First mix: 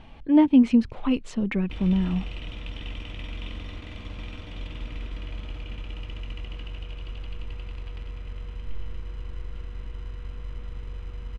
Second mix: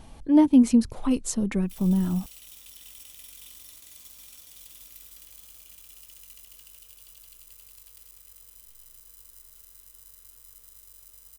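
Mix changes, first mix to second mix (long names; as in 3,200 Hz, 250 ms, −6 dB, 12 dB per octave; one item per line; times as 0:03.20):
background: add first-order pre-emphasis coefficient 0.97
master: remove low-pass with resonance 2,700 Hz, resonance Q 2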